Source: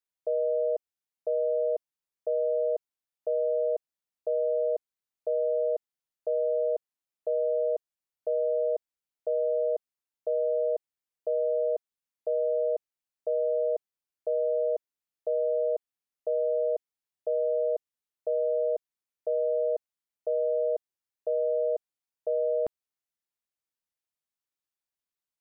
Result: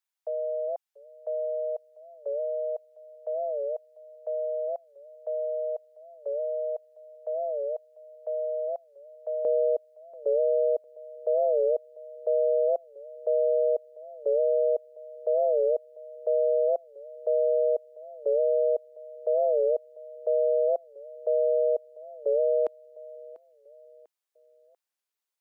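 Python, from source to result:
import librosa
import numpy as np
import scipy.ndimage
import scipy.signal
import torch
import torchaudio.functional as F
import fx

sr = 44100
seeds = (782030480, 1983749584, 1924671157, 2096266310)

y = fx.highpass(x, sr, hz=fx.steps((0.0, 670.0), (9.45, 370.0)), slope=24)
y = fx.echo_feedback(y, sr, ms=695, feedback_pct=39, wet_db=-20.5)
y = fx.record_warp(y, sr, rpm=45.0, depth_cents=160.0)
y = y * 10.0 ** (3.5 / 20.0)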